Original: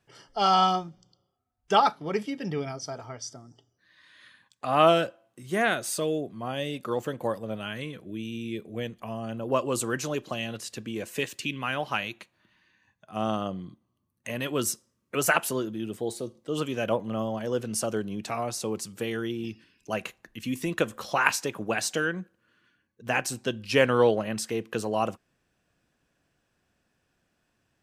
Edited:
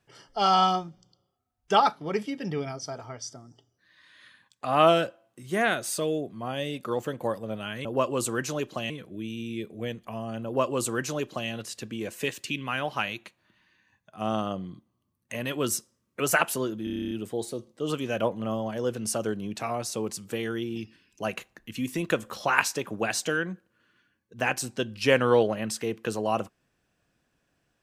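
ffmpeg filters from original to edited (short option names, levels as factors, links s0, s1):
-filter_complex "[0:a]asplit=12[s0][s1][s2][s3][s4][s5][s6][s7][s8][s9][s10][s11];[s0]atrim=end=7.852[s12];[s1]atrim=start=9.398:end=10.452[s13];[s2]atrim=start=7.848:end=15.822[s14];[s3]atrim=start=15.788:end=15.822[s15];[s4]atrim=start=15.788:end=15.822[s16];[s5]atrim=start=15.788:end=15.822[s17];[s6]atrim=start=15.788:end=15.822[s18];[s7]atrim=start=15.788:end=15.822[s19];[s8]atrim=start=15.788:end=15.822[s20];[s9]atrim=start=15.788:end=15.822[s21];[s10]atrim=start=15.788:end=15.822[s22];[s11]atrim=start=15.788[s23];[s12][s13]acrossfade=d=0.004:c1=hsin:c2=hsin[s24];[s24][s14]acrossfade=d=0.004:c1=hsin:c2=hsin[s25];[s25][s15]acrossfade=d=0.004:c1=hsin:c2=hsin[s26];[s26][s16]acrossfade=d=0.004:c1=hsin:c2=hsin[s27];[s27][s17]acrossfade=d=0.004:c1=hsin:c2=hsin[s28];[s28][s18]acrossfade=d=0.004:c1=hsin:c2=hsin[s29];[s29][s19]acrossfade=d=0.004:c1=hsin:c2=hsin[s30];[s30][s20]acrossfade=d=0.004:c1=hsin:c2=hsin[s31];[s31][s21]acrossfade=d=0.004:c1=hsin:c2=hsin[s32];[s32][s22]acrossfade=d=0.004:c1=hsin:c2=hsin[s33];[s33][s23]acrossfade=d=0.004:c1=hsin:c2=hsin"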